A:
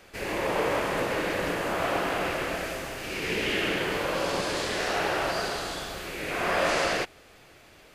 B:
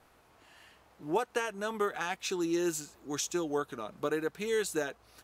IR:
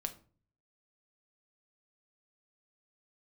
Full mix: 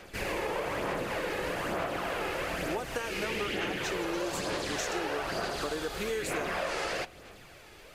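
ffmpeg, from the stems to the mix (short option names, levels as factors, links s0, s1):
-filter_complex "[0:a]aphaser=in_gain=1:out_gain=1:delay=2.4:decay=0.4:speed=1.1:type=sinusoidal,volume=0.794,asplit=2[s0][s1];[s1]volume=0.422[s2];[1:a]adelay=1600,volume=1.41[s3];[2:a]atrim=start_sample=2205[s4];[s2][s4]afir=irnorm=-1:irlink=0[s5];[s0][s3][s5]amix=inputs=3:normalize=0,acompressor=threshold=0.0316:ratio=6"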